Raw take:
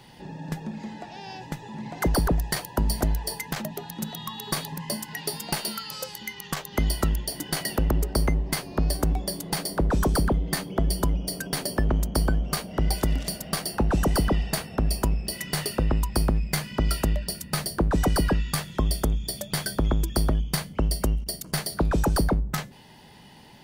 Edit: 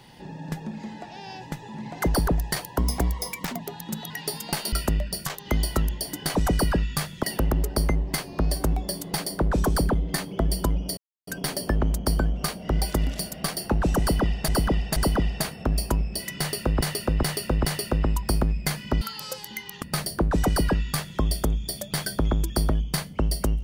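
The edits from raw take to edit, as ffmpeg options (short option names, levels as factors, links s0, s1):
-filter_complex "[0:a]asplit=16[s0][s1][s2][s3][s4][s5][s6][s7][s8][s9][s10][s11][s12][s13][s14][s15];[s0]atrim=end=2.784[s16];[s1]atrim=start=2.78:end=3.69,asetpts=PTS-STARTPTS,asetrate=49392,aresample=44100,atrim=end_sample=35831,asetpts=PTS-STARTPTS[s17];[s2]atrim=start=3.686:end=4.202[s18];[s3]atrim=start=5.098:end=5.722[s19];[s4]atrim=start=16.878:end=17.422[s20];[s5]atrim=start=6.528:end=7.622[s21];[s6]atrim=start=17.918:end=18.802[s22];[s7]atrim=start=7.618:end=11.36,asetpts=PTS-STARTPTS,afade=t=out:st=3.738:d=0.004:c=hsin,apad=pad_dur=0.3[s23];[s8]atrim=start=11.36:end=14.572,asetpts=PTS-STARTPTS,afade=t=in:d=0.004:c=hsin[s24];[s9]atrim=start=14.088:end=14.572[s25];[s10]atrim=start=14.088:end=15.942[s26];[s11]atrim=start=15.518:end=15.942[s27];[s12]atrim=start=15.518:end=15.942[s28];[s13]atrim=start=15.518:end=16.882[s29];[s14]atrim=start=5.718:end=6.532[s30];[s15]atrim=start=17.418[s31];[s16][s17]acrossfade=d=0.004:c1=hsin:c2=hsin[s32];[s32][s18]acrossfade=d=0.004:c1=hsin:c2=hsin[s33];[s33][s19]acrossfade=d=0.004:c1=hsin:c2=hsin[s34];[s34][s20]acrossfade=d=0.004:c1=hsin:c2=hsin[s35];[s35][s21]acrossfade=d=0.004:c1=hsin:c2=hsin[s36];[s36][s22]acrossfade=d=0.004:c1=hsin:c2=hsin[s37];[s23][s24]concat=n=2:v=0:a=1[s38];[s37][s38]acrossfade=d=0.004:c1=hsin:c2=hsin[s39];[s39][s25]acrossfade=d=0.004:c1=hsin:c2=hsin[s40];[s40][s26]acrossfade=d=0.004:c1=hsin:c2=hsin[s41];[s41][s27]acrossfade=d=0.004:c1=hsin:c2=hsin[s42];[s42][s28]acrossfade=d=0.004:c1=hsin:c2=hsin[s43];[s43][s29]acrossfade=d=0.004:c1=hsin:c2=hsin[s44];[s44][s30]acrossfade=d=0.004:c1=hsin:c2=hsin[s45];[s45][s31]acrossfade=d=0.004:c1=hsin:c2=hsin"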